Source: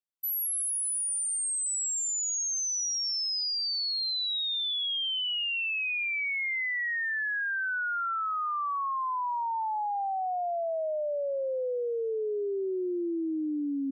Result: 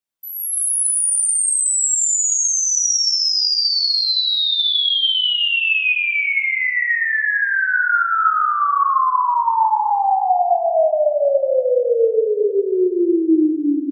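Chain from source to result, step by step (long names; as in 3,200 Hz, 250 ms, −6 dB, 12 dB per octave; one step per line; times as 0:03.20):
0:05.94–0:08.27: parametric band 2,000 Hz −10.5 dB 2 octaves
brickwall limiter −36 dBFS, peak gain reduction 8.5 dB
automatic gain control gain up to 15 dB
repeating echo 357 ms, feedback 39%, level −18 dB
dense smooth reverb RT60 1.9 s, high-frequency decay 0.45×, DRR 1 dB
level +4.5 dB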